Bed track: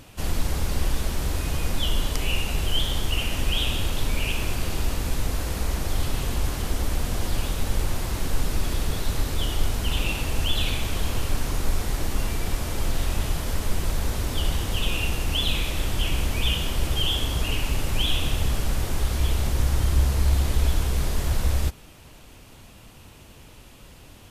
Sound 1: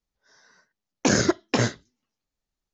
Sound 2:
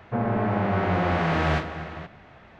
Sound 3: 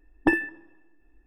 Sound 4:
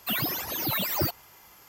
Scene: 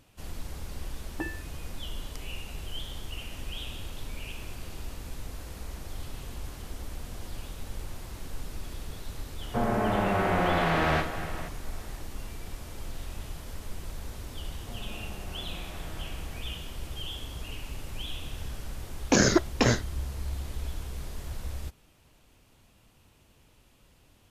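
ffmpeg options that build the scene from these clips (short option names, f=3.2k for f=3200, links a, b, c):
-filter_complex "[2:a]asplit=2[a][b];[0:a]volume=-13.5dB[c];[a]lowshelf=f=140:g=-9[d];[b]acompressor=threshold=-27dB:ratio=6:attack=3.2:release=140:knee=1:detection=peak[e];[3:a]atrim=end=1.26,asetpts=PTS-STARTPTS,volume=-14dB,afade=t=in:d=0.004:c=hsin,afade=t=out:st=1.256:d=0.004:c=hsin,adelay=930[f];[d]atrim=end=2.59,asetpts=PTS-STARTPTS,volume=-0.5dB,afade=t=in:d=0.004:c=hsin,afade=t=out:st=2.586:d=0.004:c=hsin,adelay=9420[g];[e]atrim=end=2.59,asetpts=PTS-STARTPTS,volume=-15.5dB,afade=t=in:d=0.004:c=hsin,afade=t=out:st=2.586:d=0.004:c=hsin,adelay=14550[h];[1:a]atrim=end=2.73,asetpts=PTS-STARTPTS,volume=-1dB,afade=t=in:d=0.004:c=hsin,afade=t=out:st=2.726:d=0.004:c=hsin,adelay=18070[i];[c][f][g][h][i]amix=inputs=5:normalize=0"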